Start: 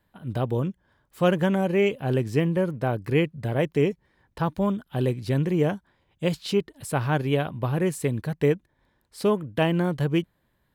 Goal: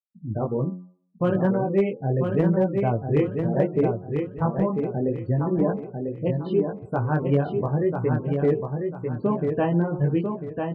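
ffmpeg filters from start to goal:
ffmpeg -i in.wav -filter_complex "[0:a]afftfilt=real='re*gte(hypot(re,im),0.0501)':imag='im*gte(hypot(re,im),0.0501)':win_size=1024:overlap=0.75,lowpass=1300,lowshelf=frequency=100:gain=-2.5,bandreject=frequency=90.15:width_type=h:width=4,bandreject=frequency=180.3:width_type=h:width=4,bandreject=frequency=270.45:width_type=h:width=4,bandreject=frequency=360.6:width_type=h:width=4,bandreject=frequency=450.75:width_type=h:width=4,bandreject=frequency=540.9:width_type=h:width=4,bandreject=frequency=631.05:width_type=h:width=4,bandreject=frequency=721.2:width_type=h:width=4,bandreject=frequency=811.35:width_type=h:width=4,bandreject=frequency=901.5:width_type=h:width=4,bandreject=frequency=991.65:width_type=h:width=4,bandreject=frequency=1081.8:width_type=h:width=4,bandreject=frequency=1171.95:width_type=h:width=4,bandreject=frequency=1262.1:width_type=h:width=4,bandreject=frequency=1352.25:width_type=h:width=4,asplit=2[link_01][link_02];[link_02]acompressor=threshold=-34dB:ratio=12,volume=-2dB[link_03];[link_01][link_03]amix=inputs=2:normalize=0,flanger=delay=16:depth=6.1:speed=0.73,asoftclip=type=hard:threshold=-16dB,asplit=2[link_04][link_05];[link_05]aecho=0:1:995|1990|2985|3980:0.562|0.18|0.0576|0.0184[link_06];[link_04][link_06]amix=inputs=2:normalize=0,volume=3dB" out.wav

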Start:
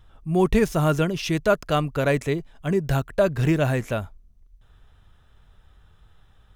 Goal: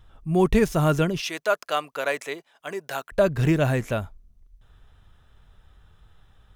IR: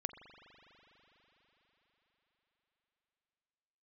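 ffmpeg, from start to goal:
-filter_complex "[0:a]asettb=1/sr,asplit=3[link_01][link_02][link_03];[link_01]atrim=end=1.204[link_04];[link_02]atrim=start=1.2:end=3.12,asetpts=PTS-STARTPTS,afade=type=in:duration=0.004:curve=qsin,afade=type=out:start_time=1.916:duration=0.004:curve=qsin,highpass=630[link_05];[link_03]atrim=start=3.116[link_06];[link_04][link_05]acrossfade=duration=0.004:curve1=hsin:curve2=qsin[link_07];[link_07][link_06]acrossfade=duration=0.004:curve1=qsin:curve2=hsin"

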